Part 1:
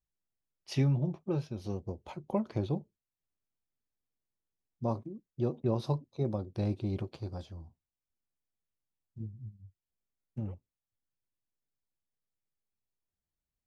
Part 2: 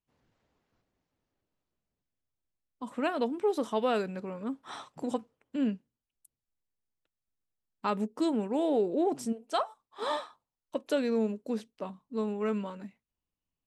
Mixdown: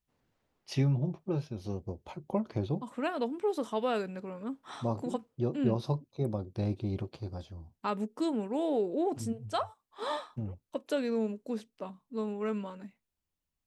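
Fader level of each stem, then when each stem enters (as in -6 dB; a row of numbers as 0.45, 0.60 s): 0.0, -2.5 dB; 0.00, 0.00 s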